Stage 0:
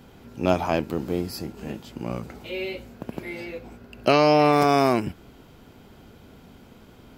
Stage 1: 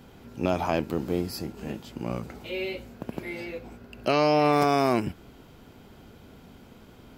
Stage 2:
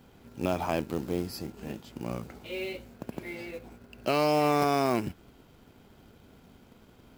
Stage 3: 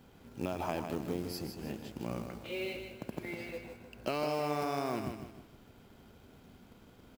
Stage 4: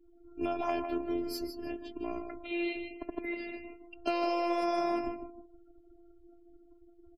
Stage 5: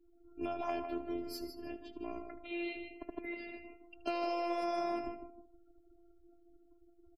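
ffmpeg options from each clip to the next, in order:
-af "alimiter=limit=-10.5dB:level=0:latency=1:release=77,volume=-1dB"
-filter_complex "[0:a]asplit=2[a][b];[b]aeval=exprs='sgn(val(0))*max(abs(val(0))-0.00447,0)':c=same,volume=-7dB[c];[a][c]amix=inputs=2:normalize=0,acrusher=bits=5:mode=log:mix=0:aa=0.000001,volume=-6.5dB"
-filter_complex "[0:a]acompressor=threshold=-28dB:ratio=6,asplit=2[a][b];[b]aecho=0:1:155|310|465|620:0.447|0.165|0.0612|0.0226[c];[a][c]amix=inputs=2:normalize=0,volume=-2.5dB"
-af "afftfilt=real='hypot(re,im)*cos(PI*b)':imag='0':win_size=512:overlap=0.75,afftdn=nr=34:nf=-52,volume=6.5dB"
-af "aecho=1:1:77:0.15,volume=-5dB"

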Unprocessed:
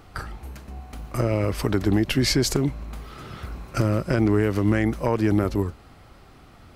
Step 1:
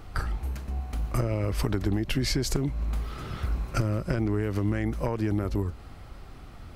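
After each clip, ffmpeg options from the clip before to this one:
-af "acompressor=threshold=-26dB:ratio=4,lowshelf=f=74:g=11.5"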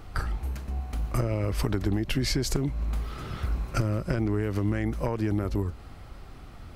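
-af anull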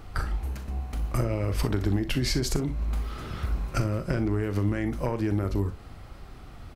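-af "aecho=1:1:40|61:0.251|0.188"

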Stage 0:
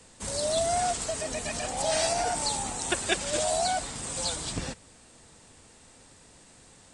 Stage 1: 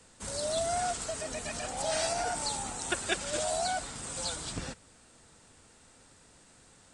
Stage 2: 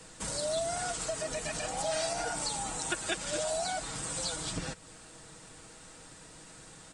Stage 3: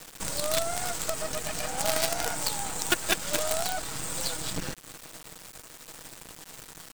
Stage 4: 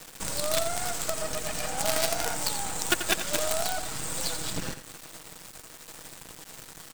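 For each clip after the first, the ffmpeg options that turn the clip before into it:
-af "equalizer=f=1.4k:t=o:w=0.29:g=5.5,volume=-4.5dB"
-af "aecho=1:1:6.3:0.5,acompressor=threshold=-44dB:ratio=2,volume=6.5dB"
-af "aeval=exprs='0.119*(cos(1*acos(clip(val(0)/0.119,-1,1)))-cos(1*PI/2))+0.00335*(cos(8*acos(clip(val(0)/0.119,-1,1)))-cos(8*PI/2))':c=same,acrusher=bits=5:dc=4:mix=0:aa=0.000001,volume=8dB"
-af "aecho=1:1:87:0.299"

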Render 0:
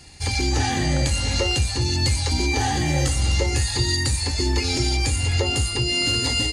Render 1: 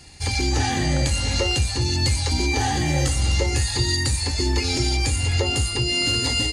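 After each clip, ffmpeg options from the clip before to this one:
-af anull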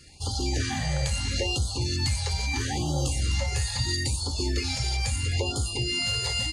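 -af "afftfilt=real='re*(1-between(b*sr/1024,250*pow(2100/250,0.5+0.5*sin(2*PI*0.76*pts/sr))/1.41,250*pow(2100/250,0.5+0.5*sin(2*PI*0.76*pts/sr))*1.41))':imag='im*(1-between(b*sr/1024,250*pow(2100/250,0.5+0.5*sin(2*PI*0.76*pts/sr))/1.41,250*pow(2100/250,0.5+0.5*sin(2*PI*0.76*pts/sr))*1.41))':win_size=1024:overlap=0.75,volume=-5.5dB"

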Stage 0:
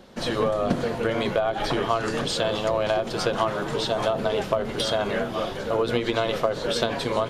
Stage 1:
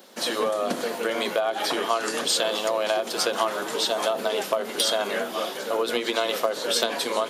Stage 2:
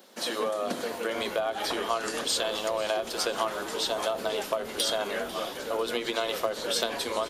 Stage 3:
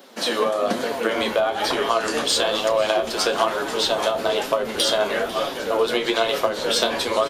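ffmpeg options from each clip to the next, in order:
-af "highpass=f=200:w=0.5412,highpass=f=200:w=1.3066,aemphasis=mode=production:type=bsi"
-filter_complex "[0:a]asplit=6[a][b][c][d][e][f];[b]adelay=496,afreqshift=-130,volume=-18dB[g];[c]adelay=992,afreqshift=-260,volume=-22.6dB[h];[d]adelay=1488,afreqshift=-390,volume=-27.2dB[i];[e]adelay=1984,afreqshift=-520,volume=-31.7dB[j];[f]adelay=2480,afreqshift=-650,volume=-36.3dB[k];[a][g][h][i][j][k]amix=inputs=6:normalize=0,volume=-4.5dB"
-filter_complex "[0:a]asplit=2[a][b];[b]adynamicsmooth=sensitivity=4:basefreq=6.3k,volume=-3dB[c];[a][c]amix=inputs=2:normalize=0,flanger=delay=7.1:depth=7:regen=42:speed=1.1:shape=sinusoidal,asplit=2[d][e];[e]adelay=31,volume=-12.5dB[f];[d][f]amix=inputs=2:normalize=0,volume=7.5dB"

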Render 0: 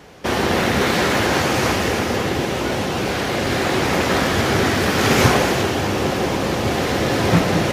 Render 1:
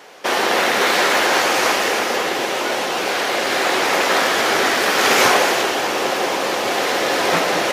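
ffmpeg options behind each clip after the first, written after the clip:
-af "highpass=500,volume=4dB"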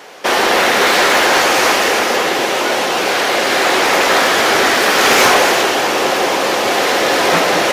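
-af "acontrast=72,volume=-1dB"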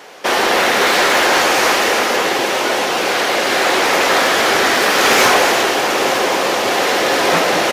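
-af "aecho=1:1:896:0.251,volume=-1.5dB"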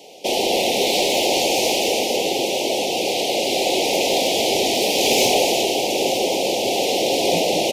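-af "asuperstop=centerf=1400:order=8:qfactor=0.83,volume=-2.5dB"

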